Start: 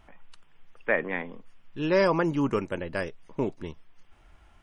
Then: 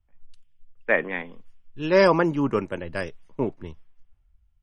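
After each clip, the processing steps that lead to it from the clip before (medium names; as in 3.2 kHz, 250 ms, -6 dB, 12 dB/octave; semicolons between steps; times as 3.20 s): in parallel at -1.5 dB: compression, threshold -31 dBFS, peak gain reduction 12.5 dB; on the sum: three bands expanded up and down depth 100%; trim -1.5 dB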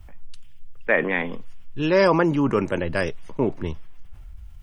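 level flattener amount 50%; trim -1 dB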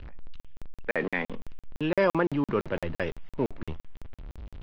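jump at every zero crossing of -32.5 dBFS; low-pass 3.8 kHz 24 dB/octave; crackling interface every 0.17 s, samples 2048, zero, from 0.40 s; trim -6 dB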